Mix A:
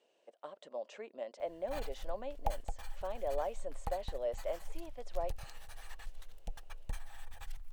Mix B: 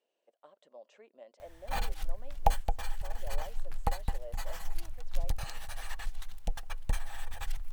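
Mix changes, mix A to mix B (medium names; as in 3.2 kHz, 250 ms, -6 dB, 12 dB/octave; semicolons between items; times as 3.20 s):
speech -10.0 dB; background +9.5 dB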